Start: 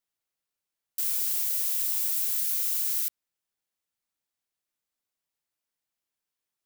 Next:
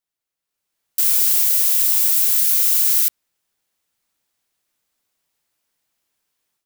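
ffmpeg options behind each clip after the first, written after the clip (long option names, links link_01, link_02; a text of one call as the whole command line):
ffmpeg -i in.wav -af "dynaudnorm=framelen=410:gausssize=3:maxgain=13dB" out.wav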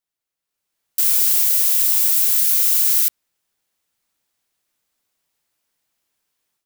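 ffmpeg -i in.wav -af anull out.wav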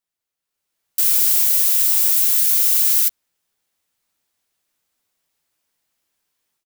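ffmpeg -i in.wav -filter_complex "[0:a]asplit=2[link_01][link_02];[link_02]adelay=12,volume=-11dB[link_03];[link_01][link_03]amix=inputs=2:normalize=0" out.wav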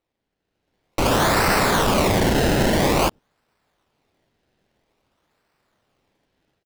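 ffmpeg -i in.wav -filter_complex "[0:a]asoftclip=type=tanh:threshold=-20dB,acrossover=split=510|4600[link_01][link_02][link_03];[link_01]aecho=1:1:104:0.158[link_04];[link_03]acrusher=samples=26:mix=1:aa=0.000001:lfo=1:lforange=26:lforate=0.5[link_05];[link_04][link_02][link_05]amix=inputs=3:normalize=0,volume=4.5dB" out.wav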